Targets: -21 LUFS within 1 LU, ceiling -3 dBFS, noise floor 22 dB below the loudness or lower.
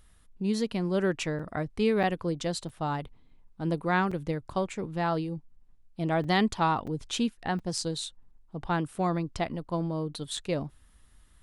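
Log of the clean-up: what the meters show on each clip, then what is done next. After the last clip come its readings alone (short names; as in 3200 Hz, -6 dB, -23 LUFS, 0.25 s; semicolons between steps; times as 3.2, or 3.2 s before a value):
dropouts 8; longest dropout 5.0 ms; loudness -30.5 LUFS; peak -13.5 dBFS; loudness target -21.0 LUFS
-> interpolate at 1.39/2.03/2.69/4.11/6.24/6.87/7.59/10.37, 5 ms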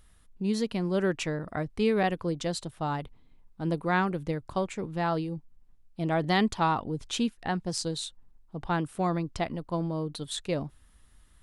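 dropouts 0; loudness -30.5 LUFS; peak -13.5 dBFS; loudness target -21.0 LUFS
-> gain +9.5 dB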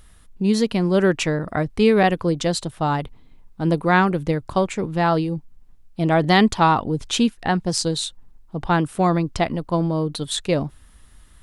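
loudness -21.0 LUFS; peak -4.0 dBFS; noise floor -50 dBFS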